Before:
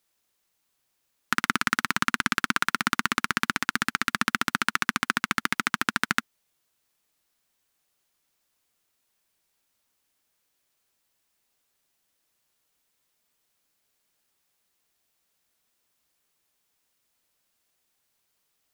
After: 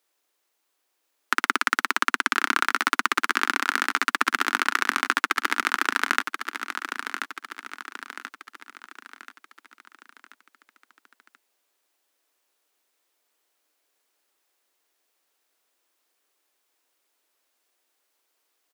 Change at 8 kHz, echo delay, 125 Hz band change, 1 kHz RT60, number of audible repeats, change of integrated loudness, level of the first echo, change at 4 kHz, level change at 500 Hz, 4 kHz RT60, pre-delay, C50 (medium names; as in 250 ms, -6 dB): 0.0 dB, 1033 ms, under -15 dB, no reverb, 5, +2.0 dB, -8.0 dB, +1.0 dB, +4.5 dB, no reverb, no reverb, no reverb